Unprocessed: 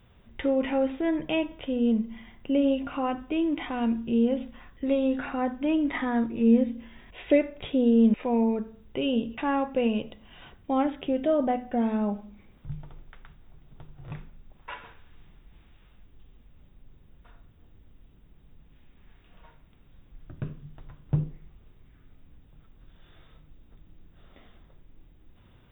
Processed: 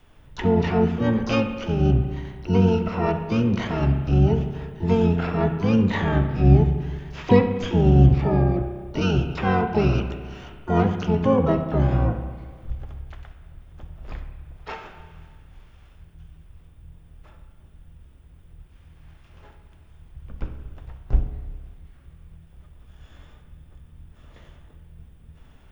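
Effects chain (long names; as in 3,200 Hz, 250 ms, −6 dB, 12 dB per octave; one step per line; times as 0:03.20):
frequency shifter −92 Hz
pitch-shifted copies added −12 semitones −3 dB, +7 semitones −14 dB, +12 semitones −11 dB
spring reverb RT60 1.7 s, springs 31/58 ms, chirp 55 ms, DRR 7.5 dB
level +3 dB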